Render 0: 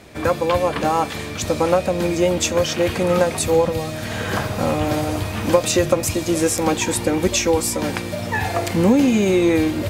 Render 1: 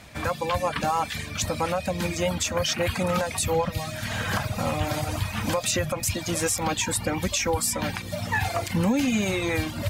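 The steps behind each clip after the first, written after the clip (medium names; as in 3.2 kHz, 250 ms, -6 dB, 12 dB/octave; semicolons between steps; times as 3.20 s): reverb removal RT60 0.75 s; peaking EQ 380 Hz -13 dB 0.94 oct; peak limiter -15 dBFS, peak gain reduction 8.5 dB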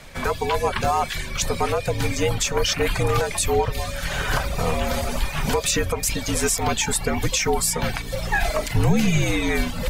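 octave divider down 2 oct, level -2 dB; frequency shift -65 Hz; trim +3.5 dB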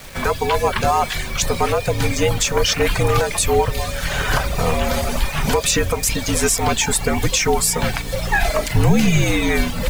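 bit crusher 7-bit; on a send at -22.5 dB: reverberation RT60 3.8 s, pre-delay 113 ms; on the sum: trim +4 dB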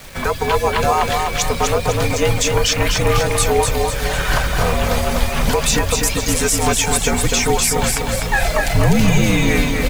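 feedback delay 250 ms, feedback 46%, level -4 dB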